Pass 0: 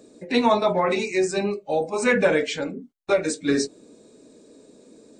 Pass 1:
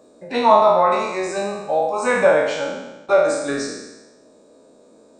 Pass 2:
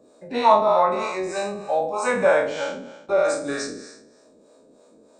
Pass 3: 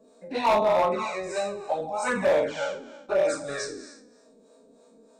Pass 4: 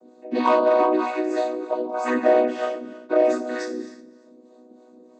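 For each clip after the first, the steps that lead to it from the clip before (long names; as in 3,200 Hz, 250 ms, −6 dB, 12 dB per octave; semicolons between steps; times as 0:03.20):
peak hold with a decay on every bin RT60 1.06 s; flat-topped bell 880 Hz +10 dB; level −5.5 dB
two-band tremolo in antiphase 3.2 Hz, depth 70%, crossover 480 Hz
flanger swept by the level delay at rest 4.6 ms, full sweep at −14.5 dBFS; hard clipping −17 dBFS, distortion −12 dB
channel vocoder with a chord as carrier major triad, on B3; level +5.5 dB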